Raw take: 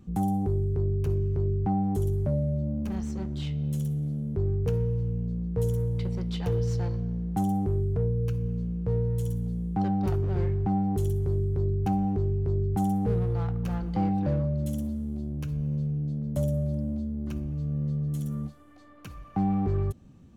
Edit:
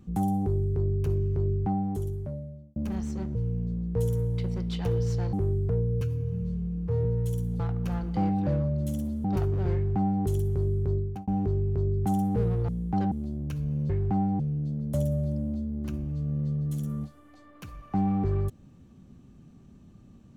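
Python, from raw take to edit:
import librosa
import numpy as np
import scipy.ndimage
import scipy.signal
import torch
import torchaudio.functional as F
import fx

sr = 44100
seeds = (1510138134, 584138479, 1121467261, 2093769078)

y = fx.edit(x, sr, fx.fade_out_span(start_s=1.53, length_s=1.23),
    fx.cut(start_s=3.35, length_s=1.61),
    fx.cut(start_s=6.94, length_s=0.66),
    fx.stretch_span(start_s=8.28, length_s=0.69, factor=1.5),
    fx.swap(start_s=9.52, length_s=0.43, other_s=13.39, other_length_s=1.65),
    fx.duplicate(start_s=10.45, length_s=0.5, to_s=15.82),
    fx.fade_out_span(start_s=11.64, length_s=0.34), tone=tone)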